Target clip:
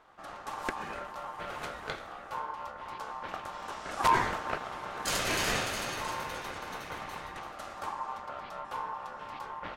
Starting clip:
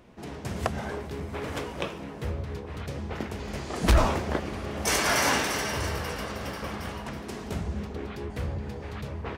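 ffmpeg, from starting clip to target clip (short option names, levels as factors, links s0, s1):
-af "asetrate=42336,aresample=44100,aeval=exprs='val(0)*sin(2*PI*980*n/s)':c=same,volume=0.708"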